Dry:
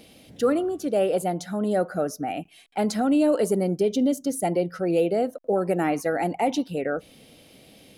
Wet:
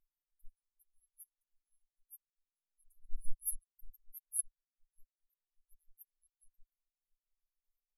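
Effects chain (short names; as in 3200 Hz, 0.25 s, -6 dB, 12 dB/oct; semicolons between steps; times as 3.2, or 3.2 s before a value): reverb removal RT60 1.1 s; inverse Chebyshev band-stop 110–2900 Hz, stop band 80 dB; high shelf 5100 Hz -7 dB; comb 6.9 ms; 3.04–3.99 sample leveller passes 2; spectral expander 2.5:1; gain +13.5 dB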